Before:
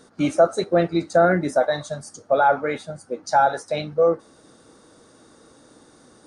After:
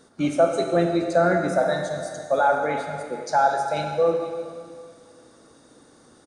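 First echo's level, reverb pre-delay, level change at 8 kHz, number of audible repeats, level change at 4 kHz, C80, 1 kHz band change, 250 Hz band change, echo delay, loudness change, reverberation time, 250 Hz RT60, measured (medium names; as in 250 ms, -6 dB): -18.0 dB, 37 ms, -1.5 dB, 1, -1.5 dB, 5.5 dB, -1.5 dB, -1.0 dB, 485 ms, -2.0 dB, 2.1 s, 2.0 s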